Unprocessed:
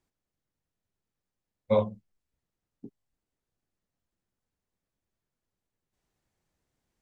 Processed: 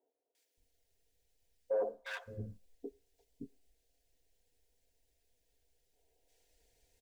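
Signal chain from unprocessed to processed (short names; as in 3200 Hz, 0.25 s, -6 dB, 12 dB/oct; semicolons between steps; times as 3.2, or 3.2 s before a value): comb 4.3 ms, depth 58%; reverse; compressor 10:1, threshold -31 dBFS, peak gain reduction 13.5 dB; reverse; fixed phaser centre 490 Hz, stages 4; hard clip -37 dBFS, distortion -8 dB; three bands offset in time mids, highs, lows 0.35/0.57 s, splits 290/1000 Hz; on a send at -17.5 dB: reverb RT60 0.60 s, pre-delay 8 ms; on the sum: gain +10 dB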